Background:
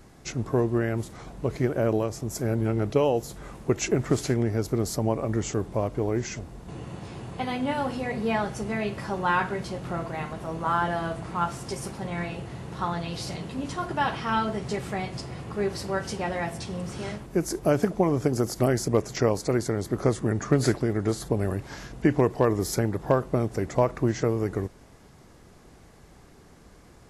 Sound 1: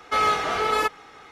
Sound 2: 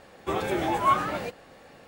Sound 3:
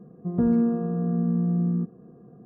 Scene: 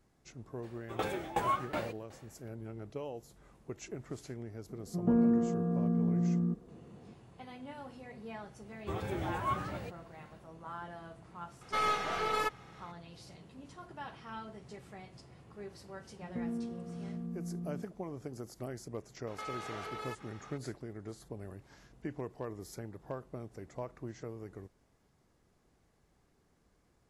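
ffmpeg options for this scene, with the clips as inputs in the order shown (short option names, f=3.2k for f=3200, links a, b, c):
-filter_complex "[2:a]asplit=2[a][b];[3:a]asplit=2[c][d];[1:a]asplit=2[e][f];[0:a]volume=-19dB[g];[a]aeval=exprs='val(0)*pow(10,-19*if(lt(mod(2.7*n/s,1),2*abs(2.7)/1000),1-mod(2.7*n/s,1)/(2*abs(2.7)/1000),(mod(2.7*n/s,1)-2*abs(2.7)/1000)/(1-2*abs(2.7)/1000))/20)':c=same[h];[c]equalizer=f=61:t=o:w=2.9:g=-6[i];[b]equalizer=f=90:t=o:w=1.9:g=14.5[j];[e]aeval=exprs='if(lt(val(0),0),0.708*val(0),val(0))':c=same[k];[f]acompressor=threshold=-32dB:ratio=6:attack=3.2:release=140:knee=1:detection=peak[l];[h]atrim=end=1.87,asetpts=PTS-STARTPTS,volume=-2dB,afade=t=in:d=0.02,afade=t=out:st=1.85:d=0.02,adelay=620[m];[i]atrim=end=2.45,asetpts=PTS-STARTPTS,volume=-3.5dB,afade=t=in:d=0.004:c=hsin,afade=t=out:st=2.446:d=0.004:c=hsin,adelay=206829S[n];[j]atrim=end=1.87,asetpts=PTS-STARTPTS,volume=-12.5dB,afade=t=in:d=0.1,afade=t=out:st=1.77:d=0.1,adelay=8600[o];[k]atrim=end=1.31,asetpts=PTS-STARTPTS,volume=-8.5dB,afade=t=in:d=0.004:c=hsin,afade=t=out:st=1.306:d=0.004:c=hsin,adelay=11610[p];[d]atrim=end=2.45,asetpts=PTS-STARTPTS,volume=-16.5dB,afade=t=in:d=0.004:c=hsin,afade=t=out:st=2.446:d=0.004:c=hsin,adelay=15970[q];[l]atrim=end=1.31,asetpts=PTS-STARTPTS,volume=-8dB,afade=t=in:d=0.004:c=hsin,afade=t=out:st=1.306:d=0.004:c=hsin,adelay=19270[r];[g][m][n][o][p][q][r]amix=inputs=7:normalize=0"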